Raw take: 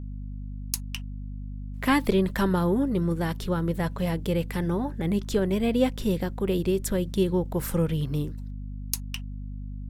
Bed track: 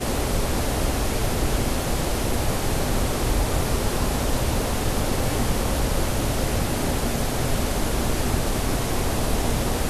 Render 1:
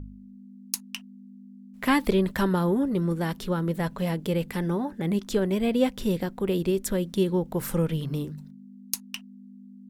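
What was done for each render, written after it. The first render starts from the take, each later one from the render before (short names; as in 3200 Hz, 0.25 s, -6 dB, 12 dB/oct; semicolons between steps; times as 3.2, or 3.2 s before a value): de-hum 50 Hz, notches 3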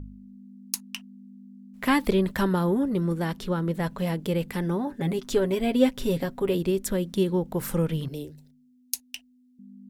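3.24–3.82 high shelf 11000 Hz -7 dB; 4.86–6.55 comb 7.3 ms; 8.08–9.59 fixed phaser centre 480 Hz, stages 4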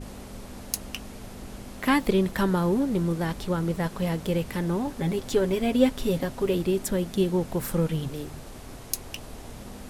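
add bed track -18.5 dB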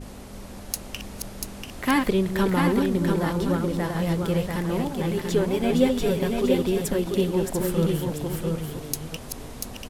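reverse delay 0.326 s, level -6 dB; on a send: echo 0.689 s -4.5 dB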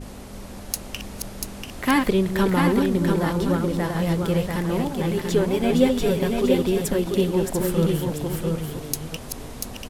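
gain +2 dB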